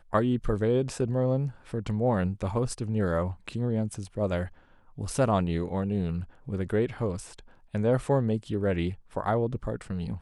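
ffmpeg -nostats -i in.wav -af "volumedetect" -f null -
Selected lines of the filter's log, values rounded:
mean_volume: -28.3 dB
max_volume: -10.8 dB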